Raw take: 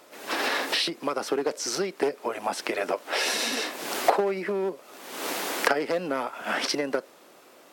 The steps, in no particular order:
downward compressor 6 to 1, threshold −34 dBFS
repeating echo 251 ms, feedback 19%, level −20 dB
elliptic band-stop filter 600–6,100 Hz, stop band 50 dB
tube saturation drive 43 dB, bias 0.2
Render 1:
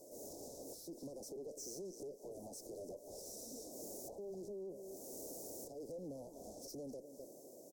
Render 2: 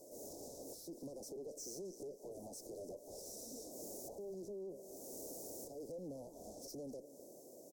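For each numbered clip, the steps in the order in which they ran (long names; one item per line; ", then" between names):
repeating echo, then downward compressor, then tube saturation, then elliptic band-stop filter
downward compressor, then repeating echo, then tube saturation, then elliptic band-stop filter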